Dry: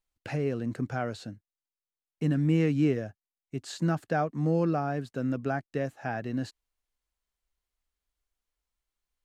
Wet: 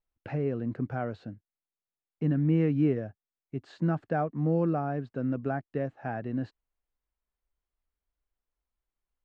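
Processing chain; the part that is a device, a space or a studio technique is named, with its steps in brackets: phone in a pocket (low-pass 3.3 kHz 12 dB/octave; treble shelf 2 kHz -10 dB)

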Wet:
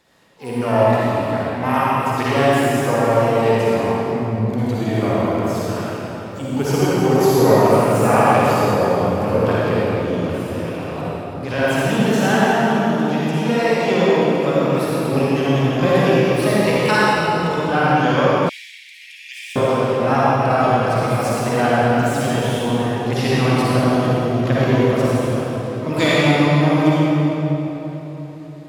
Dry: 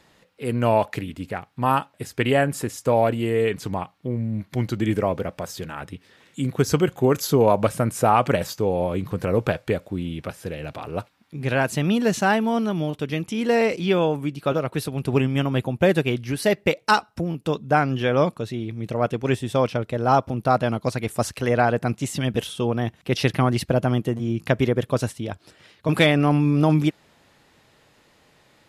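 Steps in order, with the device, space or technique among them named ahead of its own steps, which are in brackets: shimmer-style reverb (harmony voices +12 st -11 dB; reverberation RT60 3.9 s, pre-delay 45 ms, DRR -8.5 dB); 18.49–19.56 s: steep high-pass 1.9 kHz 96 dB/octave; bass shelf 100 Hz -5 dB; trim -4 dB

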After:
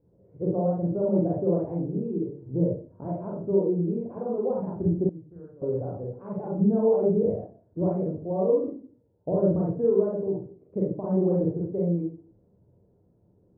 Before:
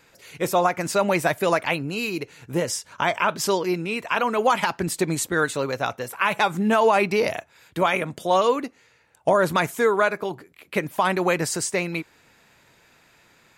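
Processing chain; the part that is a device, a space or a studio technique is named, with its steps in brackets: next room (low-pass 490 Hz 24 dB/octave; reverberation RT60 0.40 s, pre-delay 29 ms, DRR -4.5 dB); 5.09–5.62 s: amplifier tone stack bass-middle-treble 5-5-5; trim -4.5 dB

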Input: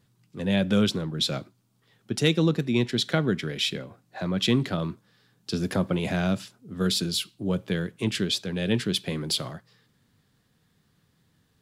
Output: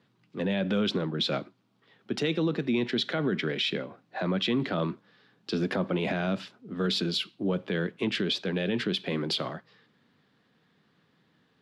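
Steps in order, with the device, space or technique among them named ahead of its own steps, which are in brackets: DJ mixer with the lows and highs turned down (three-band isolator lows -20 dB, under 170 Hz, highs -23 dB, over 4.3 kHz; peak limiter -23 dBFS, peak gain reduction 11 dB); trim +4 dB

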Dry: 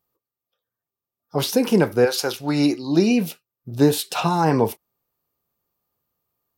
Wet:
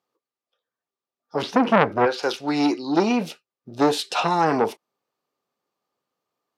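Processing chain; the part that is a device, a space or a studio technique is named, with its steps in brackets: 1.42–2.23 s: tone controls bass +12 dB, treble -15 dB; public-address speaker with an overloaded transformer (transformer saturation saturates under 1.2 kHz; band-pass 260–5900 Hz); trim +2 dB

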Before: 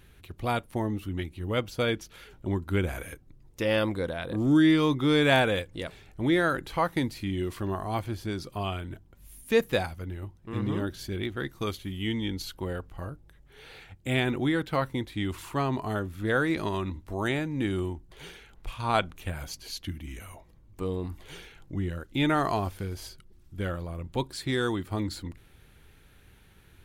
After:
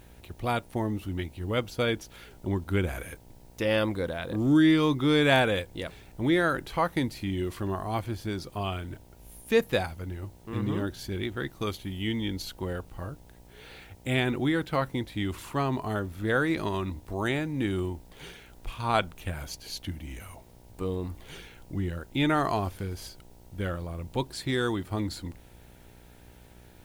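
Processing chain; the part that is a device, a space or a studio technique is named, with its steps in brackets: video cassette with head-switching buzz (mains buzz 60 Hz, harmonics 16, -55 dBFS -4 dB/octave; white noise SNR 35 dB)

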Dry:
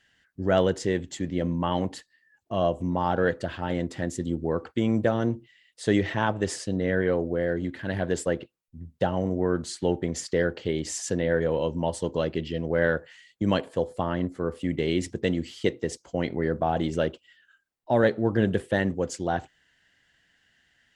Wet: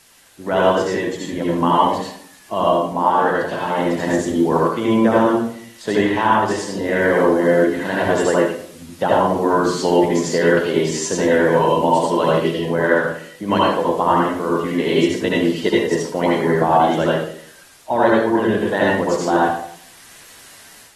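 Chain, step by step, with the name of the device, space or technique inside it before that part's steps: filmed off a television (band-pass 220–7300 Hz; peaking EQ 1 kHz +11 dB 0.49 oct; reverberation RT60 0.60 s, pre-delay 68 ms, DRR -5.5 dB; white noise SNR 28 dB; level rider gain up to 8 dB; trim -1.5 dB; AAC 32 kbps 44.1 kHz)

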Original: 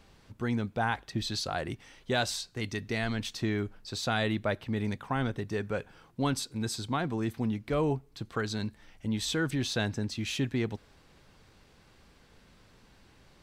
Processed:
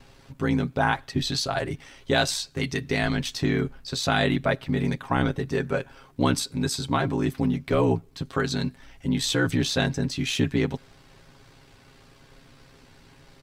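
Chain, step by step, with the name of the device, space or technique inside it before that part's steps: ring-modulated robot voice (ring modulator 32 Hz; comb 7.4 ms); trim +8 dB

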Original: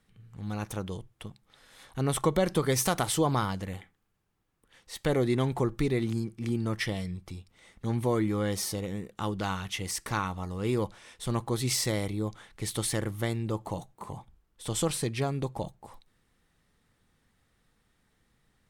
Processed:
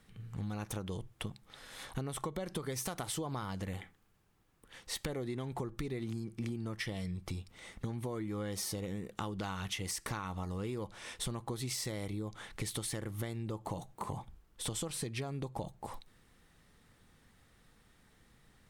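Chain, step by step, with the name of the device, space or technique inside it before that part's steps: serial compression, leveller first (compression 2.5:1, threshold -32 dBFS, peak gain reduction 8.5 dB; compression 6:1, threshold -41 dBFS, peak gain reduction 13.5 dB); trim +5.5 dB

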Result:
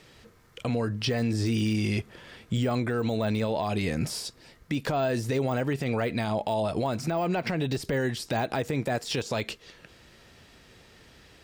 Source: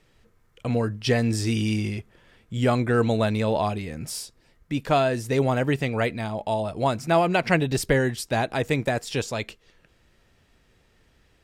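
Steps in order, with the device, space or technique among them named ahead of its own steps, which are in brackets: broadcast voice chain (high-pass 94 Hz 6 dB/octave; de-esser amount 100%; compression 5:1, threshold -31 dBFS, peak gain reduction 13 dB; peaking EQ 4.5 kHz +4 dB 0.93 oct; peak limiter -28 dBFS, peak gain reduction 9 dB); trim +9 dB

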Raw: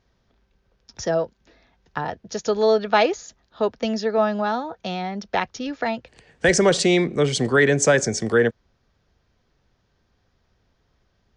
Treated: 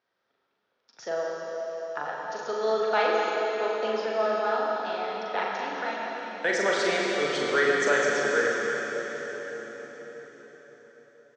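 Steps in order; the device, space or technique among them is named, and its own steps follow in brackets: station announcement (band-pass 420–4600 Hz; peaking EQ 1.4 kHz +5 dB 0.43 oct; loudspeakers at several distances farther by 14 m -4 dB, 77 m -11 dB; reverberation RT60 5.1 s, pre-delay 50 ms, DRR -1.5 dB); trim -9 dB

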